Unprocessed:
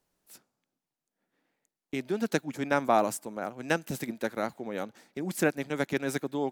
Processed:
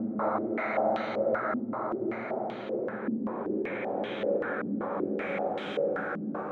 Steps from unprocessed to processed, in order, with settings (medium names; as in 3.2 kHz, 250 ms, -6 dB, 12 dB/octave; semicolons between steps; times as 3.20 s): reverse echo 464 ms -11.5 dB; Paulstretch 13×, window 0.50 s, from 4.40 s; step-sequenced low-pass 5.2 Hz 250–3200 Hz